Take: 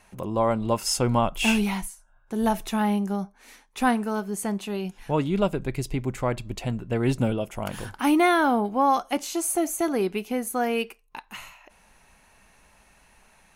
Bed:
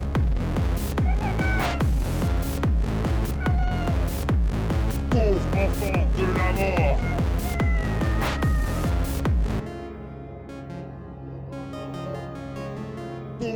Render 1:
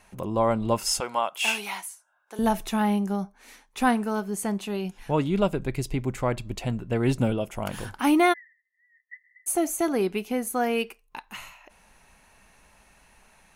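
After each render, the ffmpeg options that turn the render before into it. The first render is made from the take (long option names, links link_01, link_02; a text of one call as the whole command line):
ffmpeg -i in.wav -filter_complex "[0:a]asettb=1/sr,asplit=3[link_01][link_02][link_03];[link_01]atrim=end=1.004[link_04];[link_02]atrim=start=1:end=2.39,asetpts=PTS-STARTPTS,afade=type=in:duration=0.004:curve=qsin,afade=type=out:start_time=1.386:duration=0.004:curve=qsin,highpass=670[link_05];[link_03]atrim=start=2.386[link_06];[link_04][link_05]acrossfade=duration=0.004:curve1=hsin:curve2=qsin[link_07];[link_07][link_06]acrossfade=duration=0.004:curve1=qsin:curve2=hsin,asplit=3[link_08][link_09][link_10];[link_08]afade=type=out:start_time=8.32:duration=0.02[link_11];[link_09]asuperpass=centerf=1900:order=12:qfactor=7.5,afade=type=in:start_time=8.32:duration=0.02,afade=type=out:start_time=9.46:duration=0.02[link_12];[link_10]afade=type=in:start_time=9.46:duration=0.02[link_13];[link_11][link_12][link_13]amix=inputs=3:normalize=0" out.wav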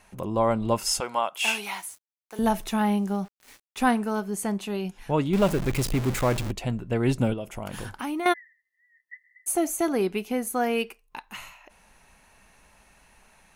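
ffmpeg -i in.wav -filter_complex "[0:a]asettb=1/sr,asplit=3[link_01][link_02][link_03];[link_01]atrim=end=1.674[link_04];[link_02]atrim=start=1.67:end=3.8,asetpts=PTS-STARTPTS,afade=type=in:duration=0.004:curve=qsin,afade=type=out:start_time=2.126:duration=0.004:curve=qsin,aeval=exprs='val(0)*gte(abs(val(0)),0.00473)':channel_layout=same[link_05];[link_03]atrim=start=3.796[link_06];[link_04][link_05]acrossfade=duration=0.004:curve1=hsin:curve2=qsin[link_07];[link_07][link_06]acrossfade=duration=0.004:curve1=qsin:curve2=hsin,asettb=1/sr,asplit=3[link_08][link_09][link_10];[link_08]atrim=end=5.334[link_11];[link_09]atrim=start=5.33:end=6.51,asetpts=PTS-STARTPTS,afade=type=in:duration=0.004:curve=qsin,afade=type=out:start_time=1.176:duration=0.004:curve=qsin,aeval=exprs='val(0)+0.5*0.0473*sgn(val(0))':channel_layout=same[link_12];[link_10]atrim=start=6.506[link_13];[link_11][link_12]acrossfade=duration=0.004:curve1=hsin:curve2=qsin[link_14];[link_14][link_13]acrossfade=duration=0.004:curve1=qsin:curve2=hsin,asettb=1/sr,asplit=3[link_15][link_16][link_17];[link_15]atrim=end=7.334[link_18];[link_16]atrim=start=7.33:end=8.26,asetpts=PTS-STARTPTS,afade=type=in:duration=0.004:curve=qsin,afade=type=out:start_time=0.926:duration=0.004:curve=qsin,acompressor=threshold=-29dB:ratio=4:attack=3.2:release=140:knee=1:detection=peak[link_19];[link_17]atrim=start=8.256[link_20];[link_18][link_19]acrossfade=duration=0.004:curve1=hsin:curve2=qsin[link_21];[link_21][link_20]acrossfade=duration=0.004:curve1=qsin:curve2=hsin" out.wav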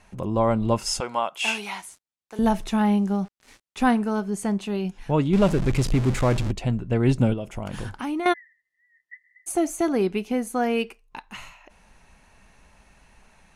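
ffmpeg -i in.wav -af "lowpass=8700,lowshelf=frequency=280:gain=6" out.wav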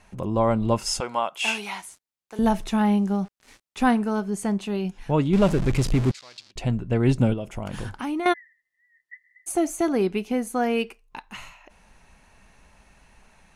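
ffmpeg -i in.wav -filter_complex "[0:a]asettb=1/sr,asplit=3[link_01][link_02][link_03];[link_01]atrim=end=6.114[link_04];[link_02]atrim=start=6.11:end=6.56,asetpts=PTS-STARTPTS,afade=type=in:duration=0.004:curve=qsin,afade=type=out:start_time=0.446:duration=0.004:curve=qsin,bandpass=frequency=4600:width_type=q:width=3.4[link_05];[link_03]atrim=start=6.556[link_06];[link_04][link_05]acrossfade=duration=0.004:curve1=hsin:curve2=qsin[link_07];[link_07][link_06]acrossfade=duration=0.004:curve1=qsin:curve2=hsin" out.wav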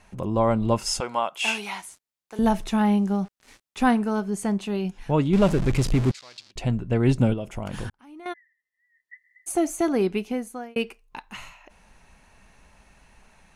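ffmpeg -i in.wav -filter_complex "[0:a]asplit=3[link_01][link_02][link_03];[link_01]atrim=end=7.9,asetpts=PTS-STARTPTS,afade=type=out:start_time=7.896:duration=0.004:curve=hsin[link_04];[link_02]atrim=start=7.9:end=10.76,asetpts=PTS-STARTPTS,afade=type=in:duration=1.65,afade=type=out:start_time=2.28:duration=0.58[link_05];[link_03]atrim=start=10.76,asetpts=PTS-STARTPTS,afade=type=in:duration=0.004:curve=hsin[link_06];[link_04][link_05][link_06]concat=n=3:v=0:a=1" out.wav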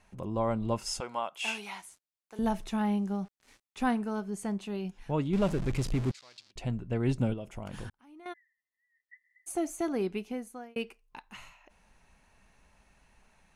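ffmpeg -i in.wav -af "volume=-8.5dB" out.wav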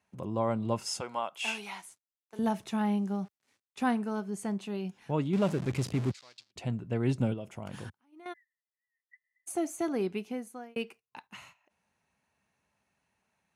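ffmpeg -i in.wav -af "agate=range=-12dB:threshold=-52dB:ratio=16:detection=peak,highpass=frequency=85:width=0.5412,highpass=frequency=85:width=1.3066" out.wav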